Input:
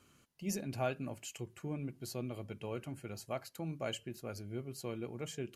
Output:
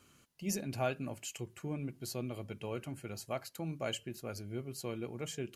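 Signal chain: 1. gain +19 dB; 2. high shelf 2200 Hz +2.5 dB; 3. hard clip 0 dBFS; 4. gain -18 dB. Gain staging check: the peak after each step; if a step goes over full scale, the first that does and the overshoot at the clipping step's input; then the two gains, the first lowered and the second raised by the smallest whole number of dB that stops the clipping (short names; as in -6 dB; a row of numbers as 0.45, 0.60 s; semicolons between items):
-4.5, -4.0, -4.0, -22.0 dBFS; no overload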